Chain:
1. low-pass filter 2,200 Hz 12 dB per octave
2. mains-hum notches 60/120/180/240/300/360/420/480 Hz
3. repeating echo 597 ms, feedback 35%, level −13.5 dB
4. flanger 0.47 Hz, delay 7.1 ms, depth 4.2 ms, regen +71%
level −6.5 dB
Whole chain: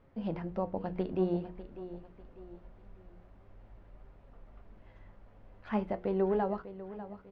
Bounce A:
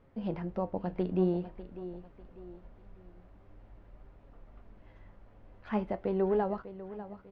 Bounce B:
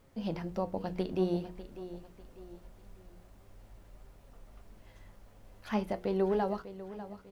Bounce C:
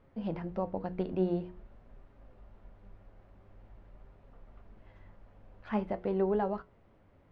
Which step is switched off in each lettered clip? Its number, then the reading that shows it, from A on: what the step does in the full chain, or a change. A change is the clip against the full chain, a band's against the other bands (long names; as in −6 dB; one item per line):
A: 2, 125 Hz band +1.5 dB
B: 1, 4 kHz band +8.0 dB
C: 3, change in integrated loudness +1.0 LU